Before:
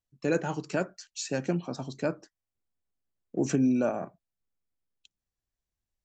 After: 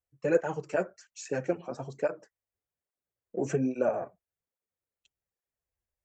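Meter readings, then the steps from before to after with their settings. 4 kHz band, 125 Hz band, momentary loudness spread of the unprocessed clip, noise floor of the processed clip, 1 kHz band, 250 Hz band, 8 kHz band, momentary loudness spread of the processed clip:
under -10 dB, -4.5 dB, 12 LU, under -85 dBFS, 0.0 dB, -6.0 dB, -6.5 dB, 12 LU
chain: graphic EQ 250/500/2000/4000 Hz -6/+8/+4/-11 dB; tape flanging out of phase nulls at 1.2 Hz, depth 7.6 ms

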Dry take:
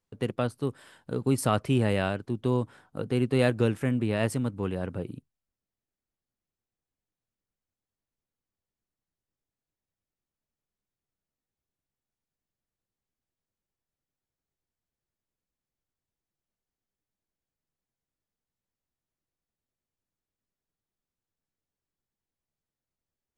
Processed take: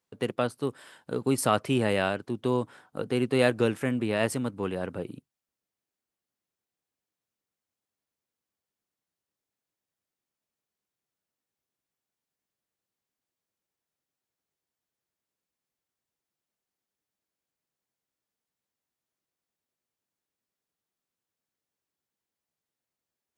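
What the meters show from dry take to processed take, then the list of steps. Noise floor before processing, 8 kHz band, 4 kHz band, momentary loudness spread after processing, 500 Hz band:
under -85 dBFS, +3.0 dB, +3.0 dB, 12 LU, +1.5 dB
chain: HPF 290 Hz 6 dB/oct; gain +3 dB

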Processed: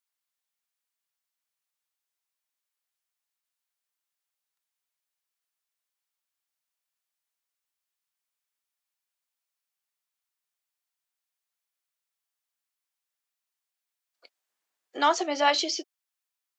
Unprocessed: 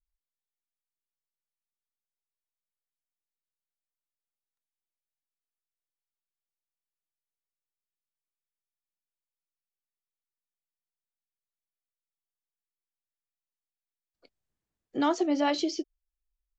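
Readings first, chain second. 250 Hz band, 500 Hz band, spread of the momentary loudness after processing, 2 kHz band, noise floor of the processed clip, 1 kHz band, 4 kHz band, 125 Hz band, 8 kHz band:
-7.5 dB, +1.5 dB, 10 LU, +8.5 dB, under -85 dBFS, +6.5 dB, +8.5 dB, under -15 dB, n/a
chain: HPF 760 Hz 12 dB/oct; gain +8.5 dB

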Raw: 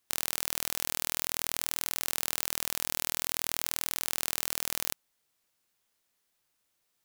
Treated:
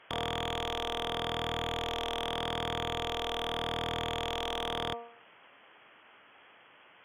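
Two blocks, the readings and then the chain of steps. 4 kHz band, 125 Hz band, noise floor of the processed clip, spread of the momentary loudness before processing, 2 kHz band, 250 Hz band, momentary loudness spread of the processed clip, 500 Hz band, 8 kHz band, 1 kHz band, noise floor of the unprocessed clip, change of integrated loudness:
+2.0 dB, +10.0 dB, -59 dBFS, 0 LU, +0.5 dB, +7.5 dB, 1 LU, +12.0 dB, -18.5 dB, +9.0 dB, -78 dBFS, -3.0 dB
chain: inverted band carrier 3300 Hz; HPF 71 Hz 12 dB/oct; de-hum 234.5 Hz, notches 5; overdrive pedal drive 36 dB, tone 1400 Hz, clips at -20 dBFS; gain +2.5 dB

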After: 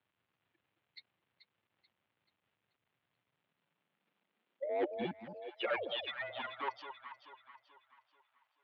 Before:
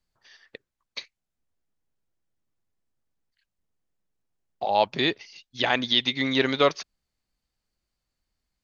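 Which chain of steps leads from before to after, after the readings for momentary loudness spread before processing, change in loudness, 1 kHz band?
18 LU, -16.0 dB, -14.5 dB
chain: per-bin expansion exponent 3; notches 60/120/180/240 Hz; dynamic EQ 300 Hz, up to +8 dB, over -42 dBFS, Q 1.1; reverse; compressor 5:1, threshold -31 dBFS, peak gain reduction 14 dB; reverse; soft clip -35 dBFS, distortion -8 dB; painted sound fall, 5.67–5.93, 250–2500 Hz -48 dBFS; crackle 540/s -68 dBFS; mistuned SSB -150 Hz 150–3500 Hz; echo with dull and thin repeats by turns 0.217 s, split 900 Hz, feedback 63%, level -7 dB; high-pass sweep 110 Hz -> 950 Hz, 3.18–6.94; gain +3 dB

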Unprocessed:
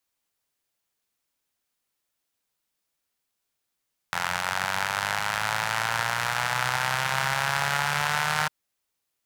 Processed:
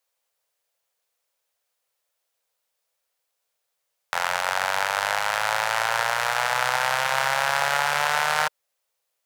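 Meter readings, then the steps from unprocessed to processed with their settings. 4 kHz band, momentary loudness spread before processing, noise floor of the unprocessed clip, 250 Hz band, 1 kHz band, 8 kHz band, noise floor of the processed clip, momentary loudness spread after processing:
+2.0 dB, 3 LU, -81 dBFS, n/a, +4.0 dB, +2.0 dB, -79 dBFS, 3 LU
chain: resonant low shelf 390 Hz -9 dB, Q 3; gain +2 dB

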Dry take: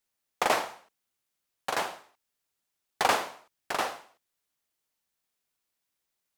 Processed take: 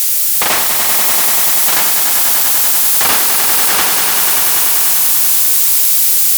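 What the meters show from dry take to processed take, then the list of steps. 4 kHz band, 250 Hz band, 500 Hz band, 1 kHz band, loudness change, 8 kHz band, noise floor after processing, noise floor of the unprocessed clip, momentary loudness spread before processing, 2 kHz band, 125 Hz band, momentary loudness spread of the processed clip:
+23.0 dB, +14.5 dB, +9.0 dB, +11.5 dB, +22.0 dB, +33.0 dB, -13 dBFS, -83 dBFS, 15 LU, +17.0 dB, n/a, 2 LU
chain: switching spikes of -25.5 dBFS; bell 590 Hz -11 dB 2.3 oct; sine folder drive 8 dB, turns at -14.5 dBFS; on a send: swelling echo 97 ms, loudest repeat 5, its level -7 dB; on the sum: added harmonics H 5 -17 dB, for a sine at -9 dBFS; gain +4.5 dB

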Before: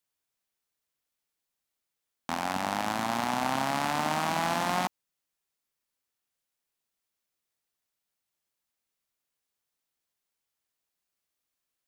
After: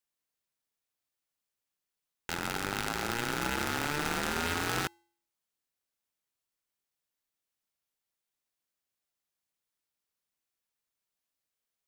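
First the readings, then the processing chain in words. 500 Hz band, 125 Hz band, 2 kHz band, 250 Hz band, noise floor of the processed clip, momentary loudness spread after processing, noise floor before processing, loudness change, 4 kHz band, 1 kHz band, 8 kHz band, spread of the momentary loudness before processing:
-3.5 dB, -0.5 dB, +0.5 dB, -3.5 dB, under -85 dBFS, 6 LU, under -85 dBFS, -3.0 dB, -0.5 dB, -7.5 dB, +0.5 dB, 6 LU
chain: de-hum 247.3 Hz, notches 2; polarity switched at an audio rate 590 Hz; gain -3.5 dB

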